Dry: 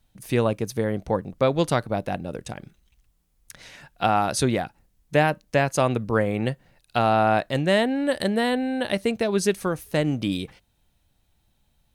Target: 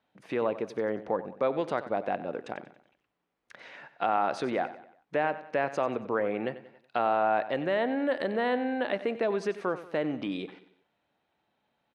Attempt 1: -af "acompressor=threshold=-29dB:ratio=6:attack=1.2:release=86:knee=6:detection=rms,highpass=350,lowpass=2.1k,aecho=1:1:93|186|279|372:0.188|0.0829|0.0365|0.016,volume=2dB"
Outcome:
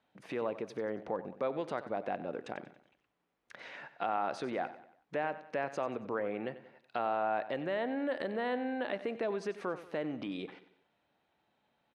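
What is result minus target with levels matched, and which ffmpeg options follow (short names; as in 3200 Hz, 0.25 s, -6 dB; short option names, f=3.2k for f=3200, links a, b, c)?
compressor: peak gain reduction +6.5 dB
-af "acompressor=threshold=-21dB:ratio=6:attack=1.2:release=86:knee=6:detection=rms,highpass=350,lowpass=2.1k,aecho=1:1:93|186|279|372:0.188|0.0829|0.0365|0.016,volume=2dB"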